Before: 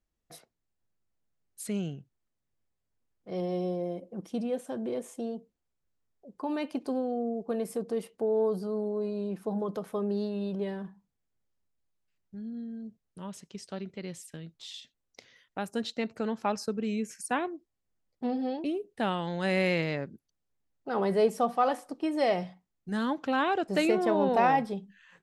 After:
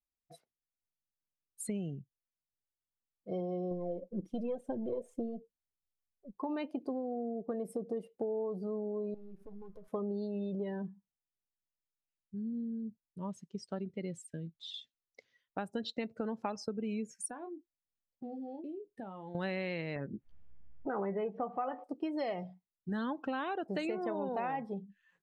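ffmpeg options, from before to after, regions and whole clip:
ffmpeg -i in.wav -filter_complex "[0:a]asettb=1/sr,asplit=3[link_01][link_02][link_03];[link_01]atrim=end=3.714[link_04];[link_02]atrim=start=3.71:end=6.37,asetpts=PTS-STARTPTS,afade=type=in:duration=0.004:curve=qsin,afade=type=out:start_time=2.656:duration=0.004:curve=qsin,aeval=exprs='if(lt(val(0),0),0.708*val(0),val(0))':channel_layout=same,aphaser=in_gain=1:out_gain=1:delay=2.3:decay=0.45:speed=2:type=triangular[link_05];[link_03]atrim=start=6.366[link_06];[link_04][link_05]acrossfade=duration=0.004:curve1=hsin:curve2=qsin[link_07];[link_07][link_06]acrossfade=duration=0.004:curve1=qsin:curve2=hsin,asettb=1/sr,asplit=3[link_08][link_09][link_10];[link_08]atrim=end=9.144[link_11];[link_09]atrim=start=9.14:end=9.88,asetpts=PTS-STARTPTS,afade=type=in:duration=0.004:curve=qsin,afade=type=out:start_time=0.736:duration=0.004:curve=qsin,bandreject=frequency=79.5:width_type=h:width=4,bandreject=frequency=159:width_type=h:width=4,bandreject=frequency=238.5:width_type=h:width=4,bandreject=frequency=318:width_type=h:width=4,bandreject=frequency=397.5:width_type=h:width=4,bandreject=frequency=477:width_type=h:width=4,bandreject=frequency=556.5:width_type=h:width=4,bandreject=frequency=636:width_type=h:width=4,bandreject=frequency=715.5:width_type=h:width=4,bandreject=frequency=795:width_type=h:width=4,bandreject=frequency=874.5:width_type=h:width=4,bandreject=frequency=954:width_type=h:width=4,bandreject=frequency=1033.5:width_type=h:width=4,bandreject=frequency=1113:width_type=h:width=4,bandreject=frequency=1192.5:width_type=h:width=4,bandreject=frequency=1272:width_type=h:width=4,bandreject=frequency=1351.5:width_type=h:width=4,bandreject=frequency=1431:width_type=h:width=4,bandreject=frequency=1510.5:width_type=h:width=4,bandreject=frequency=1590:width_type=h:width=4,bandreject=frequency=1669.5:width_type=h:width=4,bandreject=frequency=1749:width_type=h:width=4,bandreject=frequency=1828.5:width_type=h:width=4,bandreject=frequency=1908:width_type=h:width=4,bandreject=frequency=1987.5:width_type=h:width=4,bandreject=frequency=2067:width_type=h:width=4,bandreject=frequency=2146.5:width_type=h:width=4,bandreject=frequency=2226:width_type=h:width=4,bandreject=frequency=2305.5:width_type=h:width=4,bandreject=frequency=2385:width_type=h:width=4,bandreject=frequency=2464.5:width_type=h:width=4,bandreject=frequency=2544:width_type=h:width=4,bandreject=frequency=2623.5:width_type=h:width=4,bandreject=frequency=2703:width_type=h:width=4,aeval=exprs='max(val(0),0)':channel_layout=same,acompressor=threshold=-46dB:ratio=4:attack=3.2:release=140:knee=1:detection=peak[link_12];[link_10]atrim=start=9.876[link_13];[link_11][link_12]acrossfade=duration=0.004:curve1=hsin:curve2=qsin[link_14];[link_14][link_13]acrossfade=duration=0.004:curve1=qsin:curve2=hsin,asettb=1/sr,asplit=3[link_15][link_16][link_17];[link_15]atrim=end=17.304[link_18];[link_16]atrim=start=17.3:end=19.35,asetpts=PTS-STARTPTS,afade=type=in:duration=0.004:curve=qsin,afade=type=out:start_time=2.046:duration=0.004:curve=qsin,asplit=2[link_19][link_20];[link_20]adelay=26,volume=-9dB[link_21];[link_19][link_21]amix=inputs=2:normalize=0,atrim=end_sample=90405,acompressor=threshold=-42dB:ratio=6:attack=3.2:release=140:knee=1:detection=peak[link_22];[link_17]atrim=start=19.346[link_23];[link_18][link_22]acrossfade=duration=0.004:curve1=hsin:curve2=qsin[link_24];[link_24][link_23]acrossfade=duration=0.004:curve1=qsin:curve2=hsin,asettb=1/sr,asplit=3[link_25][link_26][link_27];[link_25]atrim=end=19.964[link_28];[link_26]atrim=start=19.96:end=21.84,asetpts=PTS-STARTPTS,afade=type=in:duration=0.004:curve=qsin,afade=type=out:start_time=1.876:duration=0.004:curve=qsin,lowpass=frequency=2800:width=0.5412,lowpass=frequency=2800:width=1.3066,asplit=2[link_29][link_30];[link_30]adelay=15,volume=-8dB[link_31];[link_29][link_31]amix=inputs=2:normalize=0,atrim=end_sample=82908,acompressor=mode=upward:threshold=-29dB:ratio=2.5:attack=3.2:release=140:knee=2.83:detection=peak[link_32];[link_27]atrim=start=21.836[link_33];[link_28][link_32]acrossfade=duration=0.004:curve1=hsin:curve2=qsin[link_34];[link_34][link_33]acrossfade=duration=0.004:curve1=qsin:curve2=hsin,afftdn=noise_reduction=19:noise_floor=-42,acompressor=threshold=-35dB:ratio=6,volume=1.5dB" out.wav

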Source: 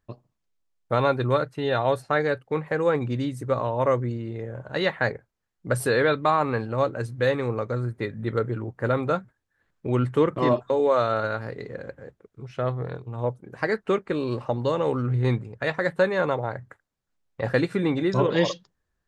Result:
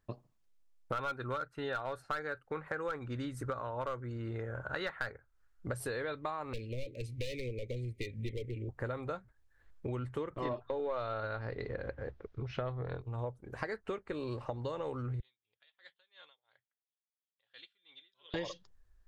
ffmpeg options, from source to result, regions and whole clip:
ffmpeg -i in.wav -filter_complex "[0:a]asettb=1/sr,asplit=3[link_01][link_02][link_03];[link_01]atrim=end=0.924[link_04];[link_02]atrim=start=0.92:end=5.68,asetpts=PTS-STARTPTS,afade=type=in:duration=0.004:curve=qsin,afade=type=out:start_time=4.756:duration=0.004:curve=qsin,equalizer=frequency=1400:width=2.9:gain=13,asoftclip=type=hard:threshold=-11.5dB[link_05];[link_03]atrim=start=5.676[link_06];[link_04][link_05]acrossfade=duration=0.004:curve1=hsin:curve2=qsin[link_07];[link_07][link_06]acrossfade=duration=0.004:curve1=qsin:curve2=hsin,asettb=1/sr,asplit=3[link_08][link_09][link_10];[link_08]atrim=end=6.534[link_11];[link_09]atrim=start=6.53:end=8.69,asetpts=PTS-STARTPTS,afade=type=in:duration=0.004:curve=qsin,afade=type=out:start_time=2.156:duration=0.004:curve=qsin,equalizer=frequency=2200:width=0.98:gain=11.5,volume=20dB,asoftclip=hard,volume=-20dB,asuperstop=centerf=1100:order=12:qfactor=0.67[link_12];[link_10]atrim=start=8.686[link_13];[link_11][link_12]acrossfade=duration=0.004:curve1=hsin:curve2=qsin[link_14];[link_14][link_13]acrossfade=duration=0.004:curve1=qsin:curve2=hsin,asettb=1/sr,asplit=3[link_15][link_16][link_17];[link_15]atrim=end=10.454[link_18];[link_16]atrim=start=10.45:end=13.01,asetpts=PTS-STARTPTS,afade=type=in:duration=0.004:curve=qsin,afade=type=out:start_time=2.556:duration=0.004:curve=qsin,lowpass=frequency=5000:width=0.5412,lowpass=frequency=5000:width=1.3066,acontrast=81[link_19];[link_17]atrim=start=13.006[link_20];[link_18][link_19]acrossfade=duration=0.004:curve1=hsin:curve2=qsin[link_21];[link_21][link_20]acrossfade=duration=0.004:curve1=qsin:curve2=hsin,asettb=1/sr,asplit=3[link_22][link_23][link_24];[link_22]atrim=end=15.204[link_25];[link_23]atrim=start=15.2:end=18.34,asetpts=PTS-STARTPTS,afade=type=in:duration=0.004:curve=qsin,afade=type=out:start_time=3.136:duration=0.004:curve=qsin,bandpass=frequency=3300:width_type=q:width=13,aeval=exprs='val(0)*pow(10,-23*(0.5-0.5*cos(2*PI*2.9*n/s))/20)':channel_layout=same[link_26];[link_24]atrim=start=18.336[link_27];[link_25][link_26]acrossfade=duration=0.004:curve1=hsin:curve2=qsin[link_28];[link_28][link_27]acrossfade=duration=0.004:curve1=qsin:curve2=hsin,asubboost=boost=10.5:cutoff=51,acompressor=threshold=-35dB:ratio=6,volume=-1dB" out.wav

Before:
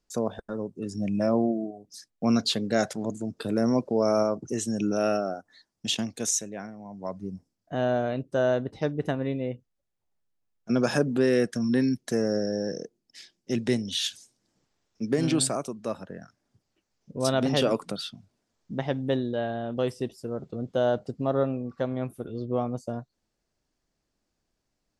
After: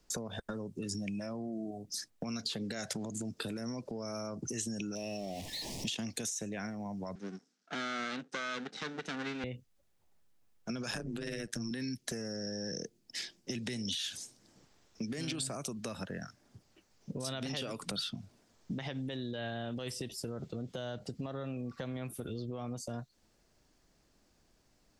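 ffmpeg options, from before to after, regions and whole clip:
ffmpeg -i in.wav -filter_complex "[0:a]asettb=1/sr,asplit=3[link_01][link_02][link_03];[link_01]atrim=end=4.954[link_04];[link_02]atrim=start=4.95:end=5.88,asetpts=PTS-STARTPTS,afade=type=in:duration=0.004:curve=qsin,afade=type=out:start_time=0.926:duration=0.004:curve=qsin,aeval=exprs='val(0)+0.5*0.00841*sgn(val(0))':channel_layout=same,asuperstop=centerf=1400:order=4:qfactor=1.1,highshelf=frequency=10000:gain=-11[link_05];[link_03]atrim=start=5.876[link_06];[link_04][link_05]acrossfade=duration=0.004:curve1=hsin:curve2=qsin[link_07];[link_07][link_06]acrossfade=duration=0.004:curve1=qsin:curve2=hsin,asettb=1/sr,asplit=3[link_08][link_09][link_10];[link_08]atrim=end=7.154[link_11];[link_09]atrim=start=7.15:end=9.44,asetpts=PTS-STARTPTS,afade=type=in:duration=0.004:curve=qsin,afade=type=out:start_time=2.286:duration=0.004:curve=qsin,aeval=exprs='max(val(0),0)':channel_layout=same,highpass=frequency=230:width=0.5412,highpass=frequency=230:width=1.3066,equalizer=frequency=330:width_type=q:width=4:gain=-8,equalizer=frequency=600:width_type=q:width=4:gain=-10,equalizer=frequency=970:width_type=q:width=4:gain=-7,equalizer=frequency=1500:width_type=q:width=4:gain=7,equalizer=frequency=3800:width_type=q:width=4:gain=3,equalizer=frequency=5900:width_type=q:width=4:gain=3,lowpass=frequency=7800:width=0.5412,lowpass=frequency=7800:width=1.3066[link_12];[link_10]atrim=start=9.436[link_13];[link_11][link_12]acrossfade=duration=0.004:curve1=hsin:curve2=qsin[link_14];[link_14][link_13]acrossfade=duration=0.004:curve1=qsin:curve2=hsin,asettb=1/sr,asplit=3[link_15][link_16][link_17];[link_15]atrim=end=10.914[link_18];[link_16]atrim=start=10.91:end=11.71,asetpts=PTS-STARTPTS,afade=type=in:duration=0.004:curve=qsin,afade=type=out:start_time=0.796:duration=0.004:curve=qsin,highpass=frequency=110:width=0.5412,highpass=frequency=110:width=1.3066,tremolo=f=110:d=0.857[link_19];[link_17]atrim=start=11.706[link_20];[link_18][link_19]acrossfade=duration=0.004:curve1=hsin:curve2=qsin[link_21];[link_21][link_20]acrossfade=duration=0.004:curve1=qsin:curve2=hsin,acompressor=threshold=-27dB:ratio=6,alimiter=level_in=5dB:limit=-24dB:level=0:latency=1:release=73,volume=-5dB,acrossover=split=180|1800[link_22][link_23][link_24];[link_22]acompressor=threshold=-54dB:ratio=4[link_25];[link_23]acompressor=threshold=-52dB:ratio=4[link_26];[link_24]acompressor=threshold=-46dB:ratio=4[link_27];[link_25][link_26][link_27]amix=inputs=3:normalize=0,volume=9.5dB" out.wav

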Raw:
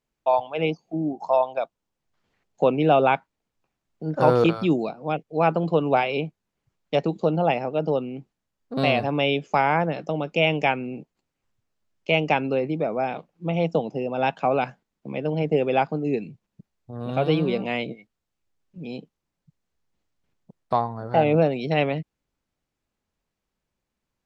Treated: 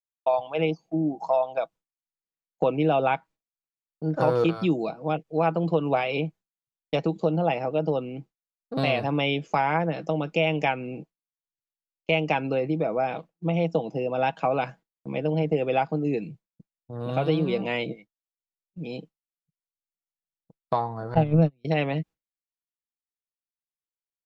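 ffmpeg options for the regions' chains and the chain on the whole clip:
ffmpeg -i in.wav -filter_complex "[0:a]asettb=1/sr,asplit=3[link_01][link_02][link_03];[link_01]atrim=end=21.144[link_04];[link_02]atrim=start=21.14:end=21.65,asetpts=PTS-STARTPTS,afade=type=in:duration=0.004:curve=qsin,afade=type=out:start_time=0.506:duration=0.004:curve=qsin,agate=range=-40dB:threshold=-19dB:ratio=16:release=100:detection=peak,bass=frequency=250:gain=15,treble=frequency=4000:gain=5[link_05];[link_03]atrim=start=21.646[link_06];[link_04][link_05]acrossfade=duration=0.004:curve1=hsin:curve2=qsin[link_07];[link_07][link_06]acrossfade=duration=0.004:curve1=qsin:curve2=hsin,agate=range=-33dB:threshold=-40dB:ratio=3:detection=peak,aecho=1:1:6.2:0.37,acompressor=threshold=-22dB:ratio=2" out.wav

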